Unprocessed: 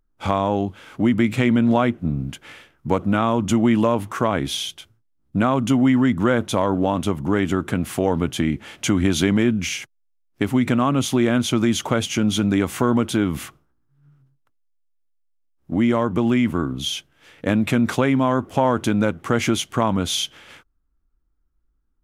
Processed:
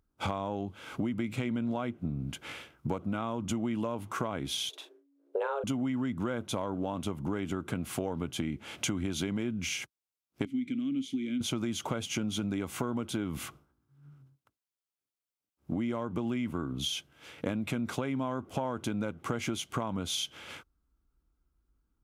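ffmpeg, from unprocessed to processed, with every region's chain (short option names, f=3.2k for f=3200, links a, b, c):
-filter_complex "[0:a]asettb=1/sr,asplit=3[a][b][c];[a]atrim=end=4.694[d];[b]atrim=start=4.69:end=5.64,asetpts=PTS-STARTPTS,afade=t=in:d=0.004:c=qsin,afade=t=out:st=0.946:d=0.004:c=qsin,highshelf=f=3.1k:g=-10.5,afreqshift=280,asplit=2[e][f];[f]adelay=41,volume=-9dB[g];[e][g]amix=inputs=2:normalize=0,atrim=end_sample=41895[h];[c]atrim=start=5.636[i];[d][h]acrossfade=d=0.004:c1=hsin:c2=qsin[j];[j][i]acrossfade=d=0.004:c1=qsin:c2=hsin,asettb=1/sr,asplit=3[k][l][m];[k]atrim=end=10.454[n];[l]atrim=start=10.45:end=11.41,asetpts=PTS-STARTPTS,afade=t=in:d=0.004:c=qsin,afade=t=out:st=0.956:d=0.004:c=qsin,asplit=3[o][p][q];[o]bandpass=f=270:t=q:w=8,volume=0dB[r];[p]bandpass=f=2.29k:t=q:w=8,volume=-6dB[s];[q]bandpass=f=3.01k:t=q:w=8,volume=-9dB[t];[r][s][t]amix=inputs=3:normalize=0,bass=f=250:g=5,treble=f=4k:g=14,bandreject=f=411.4:t=h:w=4,bandreject=f=822.8:t=h:w=4,bandreject=f=1.2342k:t=h:w=4,bandreject=f=1.6456k:t=h:w=4,bandreject=f=2.057k:t=h:w=4,bandreject=f=2.4684k:t=h:w=4,bandreject=f=2.8798k:t=h:w=4,bandreject=f=3.2912k:t=h:w=4,bandreject=f=3.7026k:t=h:w=4,bandreject=f=4.114k:t=h:w=4,bandreject=f=4.5254k:t=h:w=4,bandreject=f=4.9368k:t=h:w=4,bandreject=f=5.3482k:t=h:w=4,bandreject=f=5.7596k:t=h:w=4,bandreject=f=6.171k:t=h:w=4,bandreject=f=6.5824k:t=h:w=4,bandreject=f=6.9938k:t=h:w=4,bandreject=f=7.4052k:t=h:w=4,bandreject=f=7.8166k:t=h:w=4,bandreject=f=8.228k:t=h:w=4,bandreject=f=8.6394k:t=h:w=4,bandreject=f=9.0508k:t=h:w=4,bandreject=f=9.4622k:t=h:w=4,bandreject=f=9.8736k:t=h:w=4,bandreject=f=10.285k:t=h:w=4,bandreject=f=10.6964k:t=h:w=4,bandreject=f=11.1078k:t=h:w=4,bandreject=f=11.5192k:t=h:w=4[u];[m]atrim=start=11.406[v];[n][u]acrossfade=d=0.004:c1=hsin:c2=qsin[w];[w][v]acrossfade=d=0.004:c1=qsin:c2=hsin,bandreject=f=1.8k:w=8.3,acompressor=threshold=-31dB:ratio=5,highpass=41"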